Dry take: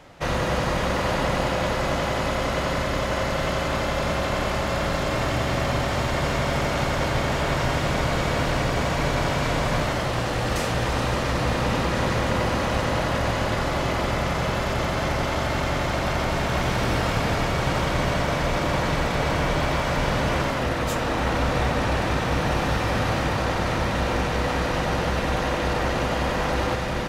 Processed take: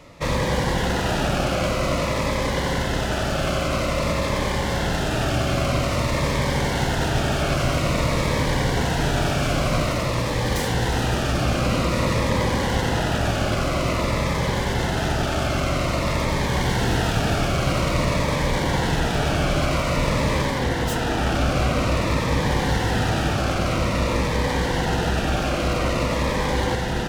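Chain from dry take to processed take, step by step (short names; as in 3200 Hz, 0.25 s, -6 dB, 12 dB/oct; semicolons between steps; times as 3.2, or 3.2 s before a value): self-modulated delay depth 0.17 ms; cascading phaser falling 0.5 Hz; gain +3.5 dB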